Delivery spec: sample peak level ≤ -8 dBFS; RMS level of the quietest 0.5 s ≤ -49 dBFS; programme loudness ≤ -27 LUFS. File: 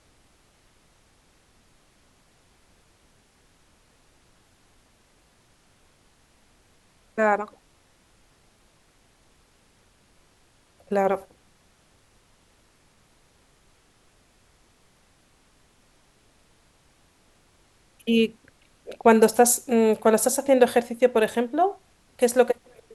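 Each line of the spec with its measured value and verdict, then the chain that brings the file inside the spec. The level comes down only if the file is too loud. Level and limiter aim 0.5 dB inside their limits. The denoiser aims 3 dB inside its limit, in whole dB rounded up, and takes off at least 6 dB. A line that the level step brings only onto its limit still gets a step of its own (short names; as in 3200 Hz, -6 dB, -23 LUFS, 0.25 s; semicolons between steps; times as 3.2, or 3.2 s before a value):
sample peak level -4.0 dBFS: fail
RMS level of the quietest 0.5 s -61 dBFS: OK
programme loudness -22.0 LUFS: fail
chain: gain -5.5 dB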